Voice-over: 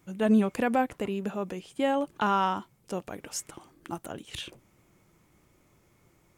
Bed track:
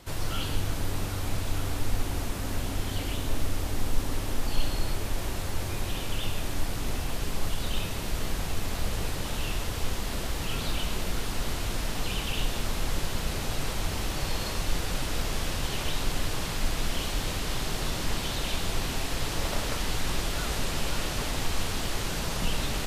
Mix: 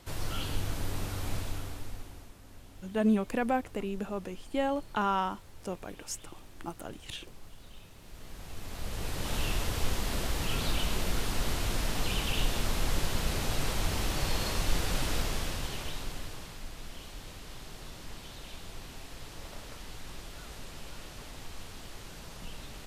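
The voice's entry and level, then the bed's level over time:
2.75 s, -3.5 dB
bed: 1.37 s -4 dB
2.37 s -21 dB
7.95 s -21 dB
9.35 s -0.5 dB
15.11 s -0.5 dB
16.66 s -15 dB

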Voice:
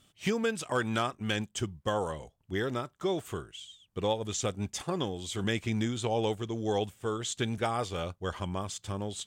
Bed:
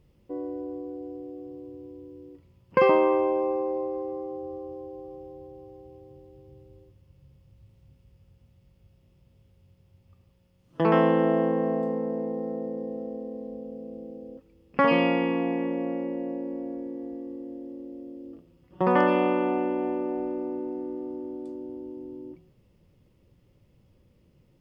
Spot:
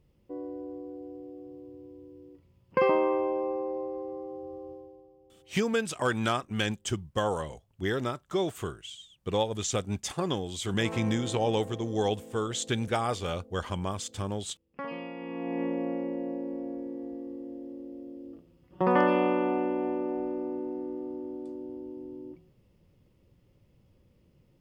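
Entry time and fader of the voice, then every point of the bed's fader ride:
5.30 s, +2.0 dB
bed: 4.71 s -4.5 dB
5.15 s -17 dB
15.14 s -17 dB
15.62 s -2 dB

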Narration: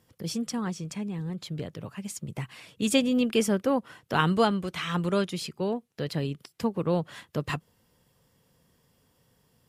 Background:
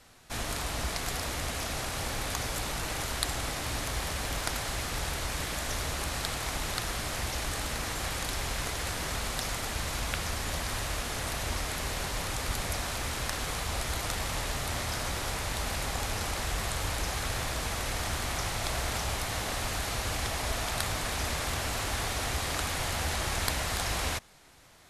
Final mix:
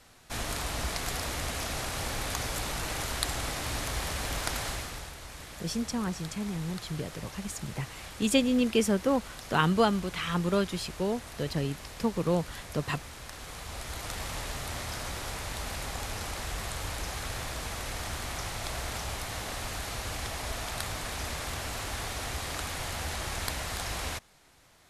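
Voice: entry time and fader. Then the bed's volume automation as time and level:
5.40 s, -1.0 dB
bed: 4.68 s 0 dB
5.14 s -11 dB
13.24 s -11 dB
14.22 s -3.5 dB

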